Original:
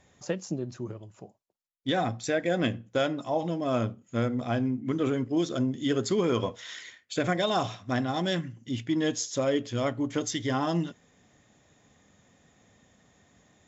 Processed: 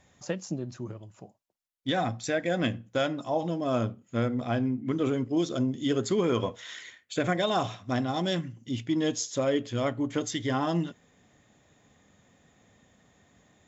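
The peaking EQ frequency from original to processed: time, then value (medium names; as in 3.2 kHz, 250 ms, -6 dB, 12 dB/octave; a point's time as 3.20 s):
peaking EQ -4 dB 0.51 oct
410 Hz
from 3.19 s 2.1 kHz
from 3.89 s 6.4 kHz
from 4.97 s 1.7 kHz
from 5.99 s 5.1 kHz
from 7.84 s 1.7 kHz
from 9.27 s 5.6 kHz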